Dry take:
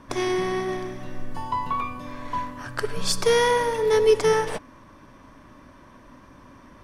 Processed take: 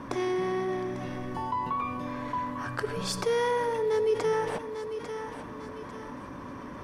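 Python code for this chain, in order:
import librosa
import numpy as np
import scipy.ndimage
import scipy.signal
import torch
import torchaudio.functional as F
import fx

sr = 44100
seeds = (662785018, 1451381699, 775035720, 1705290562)

p1 = fx.highpass(x, sr, hz=120.0, slope=6)
p2 = fx.high_shelf(p1, sr, hz=2100.0, db=-9.0)
p3 = fx.notch(p2, sr, hz=640.0, q=14.0)
p4 = p3 + fx.echo_thinned(p3, sr, ms=847, feedback_pct=27, hz=420.0, wet_db=-17, dry=0)
p5 = fx.env_flatten(p4, sr, amount_pct=50)
y = F.gain(torch.from_numpy(p5), -8.5).numpy()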